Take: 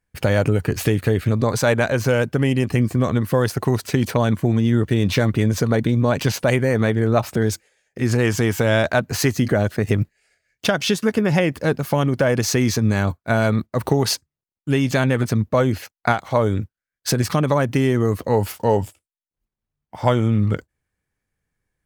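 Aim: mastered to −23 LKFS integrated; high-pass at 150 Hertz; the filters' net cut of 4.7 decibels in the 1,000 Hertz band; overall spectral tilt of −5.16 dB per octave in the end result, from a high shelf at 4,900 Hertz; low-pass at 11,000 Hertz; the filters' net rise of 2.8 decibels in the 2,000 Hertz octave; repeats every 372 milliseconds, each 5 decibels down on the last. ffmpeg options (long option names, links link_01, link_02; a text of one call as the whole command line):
ffmpeg -i in.wav -af "highpass=150,lowpass=11000,equalizer=frequency=1000:width_type=o:gain=-8.5,equalizer=frequency=2000:width_type=o:gain=8,highshelf=frequency=4900:gain=-8,aecho=1:1:372|744|1116|1488|1860|2232|2604:0.562|0.315|0.176|0.0988|0.0553|0.031|0.0173,volume=-2.5dB" out.wav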